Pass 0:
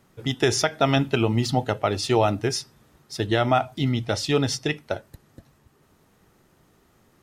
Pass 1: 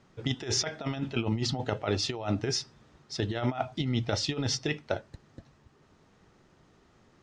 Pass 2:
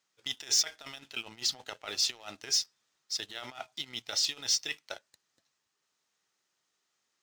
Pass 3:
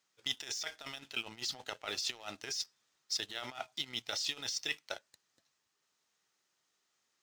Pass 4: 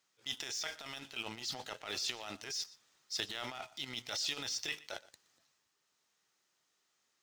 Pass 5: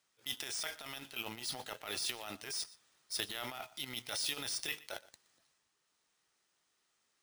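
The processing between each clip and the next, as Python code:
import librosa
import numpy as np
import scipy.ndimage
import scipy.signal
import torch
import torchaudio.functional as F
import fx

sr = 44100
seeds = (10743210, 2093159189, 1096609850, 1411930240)

y1 = scipy.signal.sosfilt(scipy.signal.butter(4, 6600.0, 'lowpass', fs=sr, output='sos'), x)
y1 = fx.over_compress(y1, sr, threshold_db=-24.0, ratio=-0.5)
y1 = y1 * 10.0 ** (-4.5 / 20.0)
y2 = np.diff(y1, prepend=0.0)
y2 = fx.leveller(y2, sr, passes=2)
y2 = y2 * 10.0 ** (1.0 / 20.0)
y3 = fx.over_compress(y2, sr, threshold_db=-32.0, ratio=-1.0)
y3 = y3 * 10.0 ** (-3.0 / 20.0)
y4 = fx.transient(y3, sr, attack_db=-8, sustain_db=5)
y4 = y4 + 10.0 ** (-20.0 / 20.0) * np.pad(y4, (int(120 * sr / 1000.0), 0))[:len(y4)]
y4 = y4 * 10.0 ** (1.0 / 20.0)
y5 = np.repeat(y4[::3], 3)[:len(y4)]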